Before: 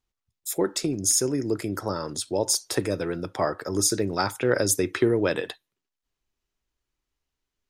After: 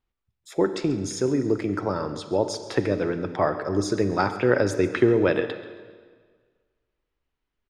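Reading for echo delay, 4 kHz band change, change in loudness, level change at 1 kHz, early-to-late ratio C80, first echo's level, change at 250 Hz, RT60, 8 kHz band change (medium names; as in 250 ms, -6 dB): 136 ms, -6.5 dB, +0.5 dB, +3.0 dB, 11.5 dB, -17.0 dB, +3.0 dB, 1.7 s, -14.0 dB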